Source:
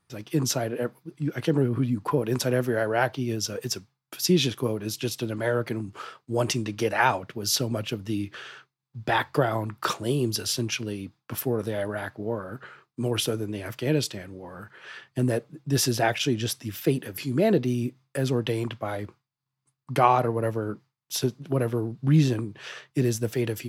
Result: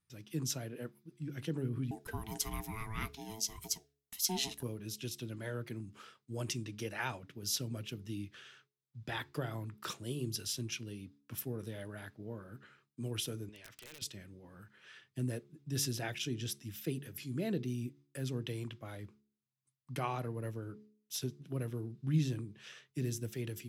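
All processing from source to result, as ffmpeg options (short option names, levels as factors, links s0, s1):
-filter_complex "[0:a]asettb=1/sr,asplit=3[s0][s1][s2];[s0]atrim=end=1.914[s3];[s1]atrim=start=1.91:end=4.63,asetpts=PTS-STARTPTS,afade=t=in:d=0.004:c=qsin,afade=t=out:st=2.716:d=0.004:c=qsin,aeval=exprs='val(0)*sin(2*PI*550*n/s)':c=same,highshelf=f=4200:g=11[s4];[s2]atrim=start=4.626[s5];[s3][s4]acrossfade=d=0.004:c1=hsin:c2=qsin[s6];[s6][s5]acrossfade=d=0.004:c1=qsin:c2=hsin,asettb=1/sr,asplit=3[s7][s8][s9];[s7]atrim=end=13.494[s10];[s8]atrim=start=13.49:end=14.02,asetpts=PTS-STARTPTS,afade=t=in:d=0.004:c=qsin,afade=t=out:st=0.526:d=0.004:c=qsin,acrossover=split=560 6600:gain=0.158 1 0.126[s11][s12][s13];[s11][s12][s13]amix=inputs=3:normalize=0,acompressor=threshold=0.02:ratio=8:attack=3.2:release=140:knee=1:detection=peak,aeval=exprs='(mod(35.5*val(0)+1,2)-1)/35.5':c=same[s14];[s9]atrim=start=14.016[s15];[s10][s14]acrossfade=d=0.004:c1=hsin:c2=qsin[s16];[s16][s15]acrossfade=d=0.004:c1=qsin:c2=hsin,equalizer=f=770:t=o:w=2.3:g=-11,bandreject=f=4500:w=16,bandreject=f=70.83:t=h:w=4,bandreject=f=141.66:t=h:w=4,bandreject=f=212.49:t=h:w=4,bandreject=f=283.32:t=h:w=4,bandreject=f=354.15:t=h:w=4,bandreject=f=424.98:t=h:w=4,volume=0.355"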